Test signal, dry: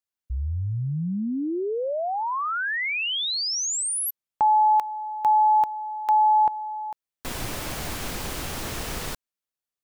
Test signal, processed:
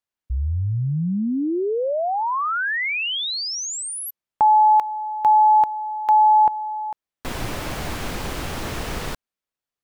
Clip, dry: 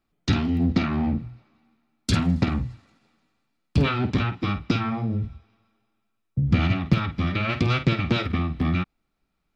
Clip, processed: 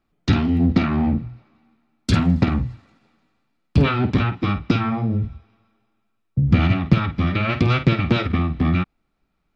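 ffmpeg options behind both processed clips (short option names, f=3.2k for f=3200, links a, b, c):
-af "highshelf=f=4.6k:g=-9,volume=4.5dB"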